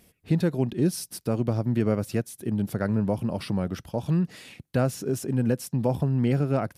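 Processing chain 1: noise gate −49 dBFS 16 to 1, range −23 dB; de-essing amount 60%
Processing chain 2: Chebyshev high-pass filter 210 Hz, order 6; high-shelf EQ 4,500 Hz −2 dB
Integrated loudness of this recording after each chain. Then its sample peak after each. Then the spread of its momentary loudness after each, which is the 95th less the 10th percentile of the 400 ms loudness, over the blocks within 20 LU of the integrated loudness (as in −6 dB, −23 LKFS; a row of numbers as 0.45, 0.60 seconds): −27.0, −30.0 LKFS; −11.0, −13.0 dBFS; 6, 7 LU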